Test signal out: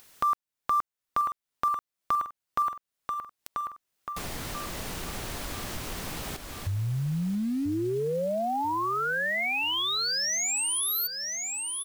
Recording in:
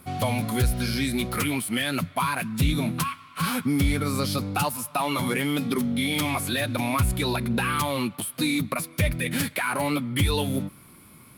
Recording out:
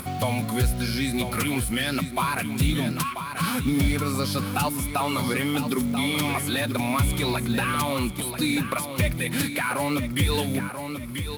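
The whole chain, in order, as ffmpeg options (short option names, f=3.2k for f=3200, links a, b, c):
-af "aecho=1:1:987|1974|2961|3948:0.355|0.11|0.0341|0.0106,acrusher=bits=6:mode=log:mix=0:aa=0.000001,acompressor=mode=upward:threshold=-27dB:ratio=2.5"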